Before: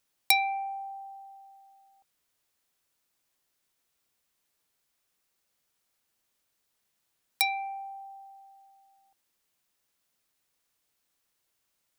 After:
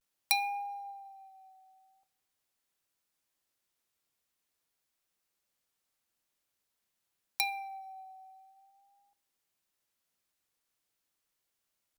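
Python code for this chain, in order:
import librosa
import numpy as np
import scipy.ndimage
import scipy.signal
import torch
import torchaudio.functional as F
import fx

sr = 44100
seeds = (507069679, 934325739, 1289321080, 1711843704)

y = fx.vibrato(x, sr, rate_hz=0.46, depth_cents=54.0)
y = fx.rev_double_slope(y, sr, seeds[0], early_s=0.51, late_s=2.2, knee_db=-21, drr_db=16.5)
y = F.gain(torch.from_numpy(y), -5.5).numpy()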